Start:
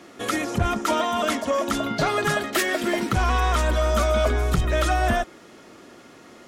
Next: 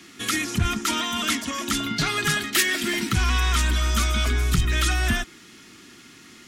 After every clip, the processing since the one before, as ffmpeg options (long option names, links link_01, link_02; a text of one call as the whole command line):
ffmpeg -i in.wav -filter_complex "[0:a]acrossover=split=380|1900[link_01][link_02][link_03];[link_02]highpass=1300[link_04];[link_03]acontrast=31[link_05];[link_01][link_04][link_05]amix=inputs=3:normalize=0,volume=1dB" out.wav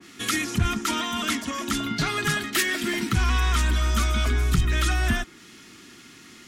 ffmpeg -i in.wav -af "adynamicequalizer=threshold=0.0112:dfrequency=1900:dqfactor=0.7:tfrequency=1900:tqfactor=0.7:attack=5:release=100:ratio=0.375:range=2:mode=cutabove:tftype=highshelf" out.wav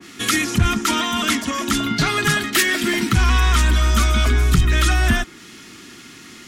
ffmpeg -i in.wav -af "acontrast=71" out.wav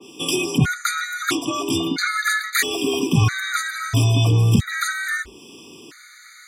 ffmpeg -i in.wav -af "afreqshift=52,afftfilt=real='re*gt(sin(2*PI*0.76*pts/sr)*(1-2*mod(floor(b*sr/1024/1200),2)),0)':imag='im*gt(sin(2*PI*0.76*pts/sr)*(1-2*mod(floor(b*sr/1024/1200),2)),0)':win_size=1024:overlap=0.75" out.wav